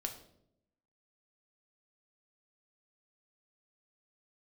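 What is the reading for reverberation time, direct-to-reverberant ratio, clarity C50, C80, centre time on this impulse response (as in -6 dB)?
0.75 s, 4.0 dB, 10.0 dB, 13.0 dB, 15 ms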